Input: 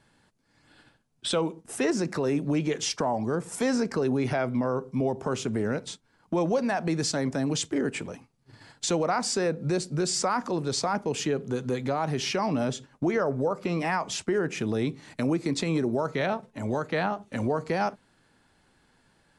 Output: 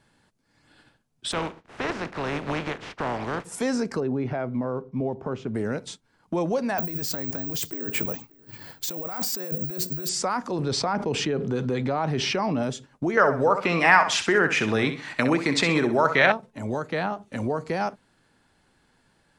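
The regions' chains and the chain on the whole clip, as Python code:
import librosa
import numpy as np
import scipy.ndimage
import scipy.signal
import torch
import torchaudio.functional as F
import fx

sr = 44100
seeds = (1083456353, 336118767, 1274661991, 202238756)

y = fx.spec_flatten(x, sr, power=0.32, at=(1.31, 3.44), fade=0.02)
y = fx.lowpass(y, sr, hz=1900.0, slope=12, at=(1.31, 3.44), fade=0.02)
y = fx.chain(y, sr, fx.block_float(bits=7),
    fx.spacing_loss(db_at_10k=30), at=(4.0, 5.55))
y = fx.chain(y, sr, fx.resample_bad(factor=2, down='none', up='zero_stuff'),
    fx.over_compress(threshold_db=-30.0, ratio=-1.0),
    fx.echo_single(ms=584, db=-23.5), at=(6.78, 10.09))
y = fx.chain(y, sr, fx.air_absorb(metres=89.0),
    fx.notch(hz=6700.0, q=11.0),
    fx.env_flatten(amount_pct=70), at=(10.59, 12.63))
y = fx.chain(y, sr, fx.peak_eq(hz=1800.0, db=14.5, octaves=2.8),
    fx.echo_feedback(ms=64, feedback_pct=31, wet_db=-10), at=(13.17, 16.32))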